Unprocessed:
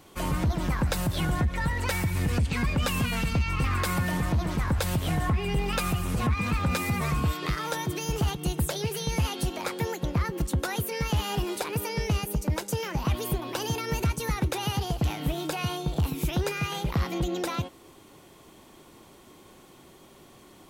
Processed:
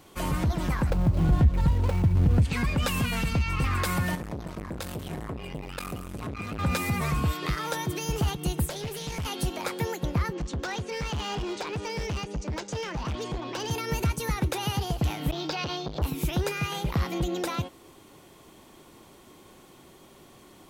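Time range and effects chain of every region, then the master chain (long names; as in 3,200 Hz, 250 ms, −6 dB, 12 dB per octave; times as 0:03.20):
0:00.90–0:02.42: running median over 25 samples + low-shelf EQ 190 Hz +8 dB
0:04.15–0:06.59: tuned comb filter 55 Hz, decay 0.31 s + saturating transformer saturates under 410 Hz
0:08.66–0:09.26: high-pass filter 59 Hz + tube saturation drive 28 dB, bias 0.5 + highs frequency-modulated by the lows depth 0.27 ms
0:10.33–0:13.71: Butterworth low-pass 6,900 Hz + hard clipping −28 dBFS
0:15.31–0:16.02: high shelf with overshoot 7,000 Hz −13 dB, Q 3 + saturating transformer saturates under 760 Hz
whole clip: no processing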